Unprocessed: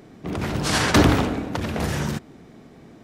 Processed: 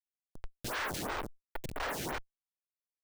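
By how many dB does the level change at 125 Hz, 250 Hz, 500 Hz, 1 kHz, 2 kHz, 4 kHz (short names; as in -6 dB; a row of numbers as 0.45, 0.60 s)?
-24.0, -23.5, -16.5, -13.0, -13.0, -16.0 dB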